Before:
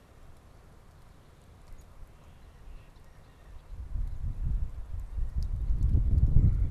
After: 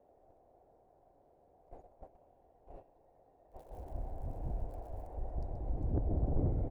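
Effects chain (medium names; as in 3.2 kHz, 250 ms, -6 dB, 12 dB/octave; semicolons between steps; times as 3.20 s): 3.51–5.07 s: zero-crossing glitches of -37.5 dBFS; high-order bell 680 Hz +12 dB 2.9 oct; delay 128 ms -9.5 dB; gate -43 dBFS, range -15 dB; FFT filter 100 Hz 0 dB, 420 Hz +5 dB, 750 Hz +12 dB, 1.2 kHz -15 dB, 2.4 kHz -6 dB, 3.6 kHz -11 dB; saturation -16 dBFS, distortion -15 dB; trim -7.5 dB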